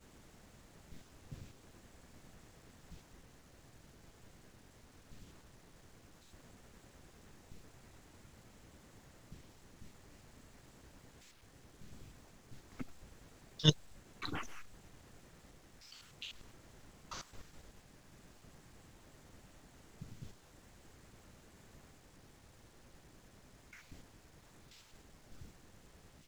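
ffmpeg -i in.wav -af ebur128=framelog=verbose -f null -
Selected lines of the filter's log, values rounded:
Integrated loudness:
  I:         -42.5 LUFS
  Threshold: -58.5 LUFS
Loudness range:
  LRA:        21.0 LU
  Threshold: -68.1 LUFS
  LRA low:   -60.6 LUFS
  LRA high:  -39.6 LUFS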